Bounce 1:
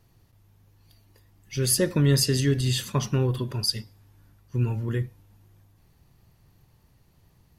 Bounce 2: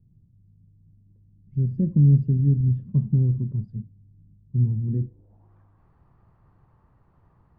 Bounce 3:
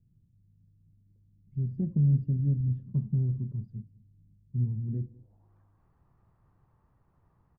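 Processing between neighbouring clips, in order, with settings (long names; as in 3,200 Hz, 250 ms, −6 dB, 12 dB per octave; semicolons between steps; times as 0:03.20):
low-pass filter sweep 180 Hz → 1,200 Hz, 0:04.89–0:05.55
single-tap delay 201 ms −22.5 dB; highs frequency-modulated by the lows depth 0.27 ms; level −7.5 dB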